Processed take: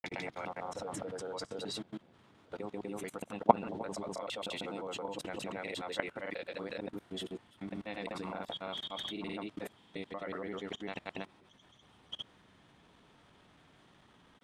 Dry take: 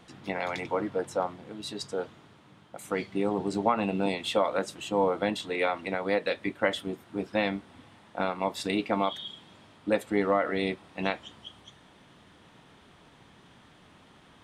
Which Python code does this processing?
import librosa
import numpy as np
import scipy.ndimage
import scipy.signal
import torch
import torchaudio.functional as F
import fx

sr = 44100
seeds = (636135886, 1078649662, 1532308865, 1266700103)

y = fx.block_reorder(x, sr, ms=134.0, group=5)
y = fx.granulator(y, sr, seeds[0], grain_ms=100.0, per_s=20.0, spray_ms=214.0, spread_st=0)
y = fx.level_steps(y, sr, step_db=23)
y = y * librosa.db_to_amplitude(6.0)